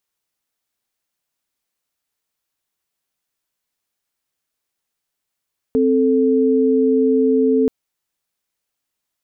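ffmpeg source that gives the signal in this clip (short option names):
-f lavfi -i "aevalsrc='0.178*(sin(2*PI*261.63*t)+sin(2*PI*440*t))':d=1.93:s=44100"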